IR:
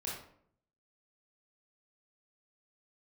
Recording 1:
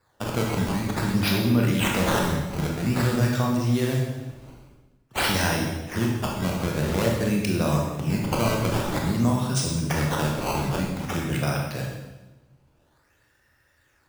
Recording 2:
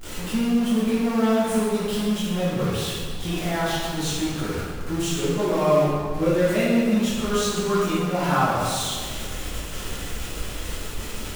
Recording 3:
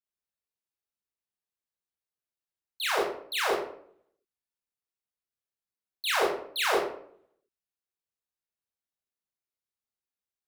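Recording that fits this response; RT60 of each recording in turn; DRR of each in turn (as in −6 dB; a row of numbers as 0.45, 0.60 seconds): 3; 1.1, 1.7, 0.65 seconds; −1.0, −11.0, −5.5 decibels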